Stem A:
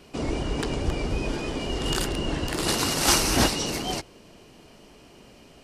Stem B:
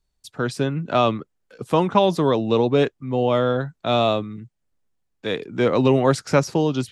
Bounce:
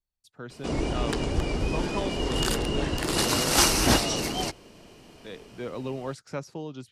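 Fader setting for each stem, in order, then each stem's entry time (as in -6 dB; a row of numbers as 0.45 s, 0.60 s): 0.0 dB, -16.5 dB; 0.50 s, 0.00 s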